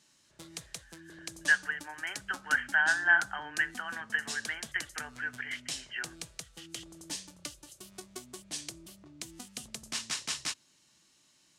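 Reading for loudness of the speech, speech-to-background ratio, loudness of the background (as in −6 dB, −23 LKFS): −31.0 LKFS, 10.5 dB, −41.5 LKFS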